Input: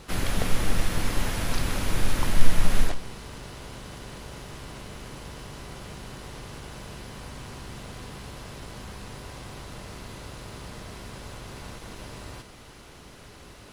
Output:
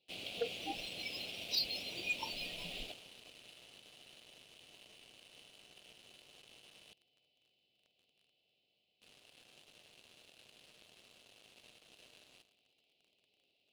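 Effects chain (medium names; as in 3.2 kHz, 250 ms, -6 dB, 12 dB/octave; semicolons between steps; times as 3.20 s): median filter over 3 samples; high-pass 110 Hz 12 dB/octave; high-order bell 3 kHz +14.5 dB; thinning echo 100 ms, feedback 81%, high-pass 410 Hz, level -17 dB; 6.93–9.02 s: gate -32 dBFS, range -9 dB; Chebyshev band-stop 720–2700 Hz, order 3; tone controls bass -13 dB, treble -14 dB; echo whose repeats swap between lows and highs 366 ms, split 1.5 kHz, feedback 74%, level -12 dB; spectral noise reduction 26 dB; waveshaping leveller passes 3; trim +1 dB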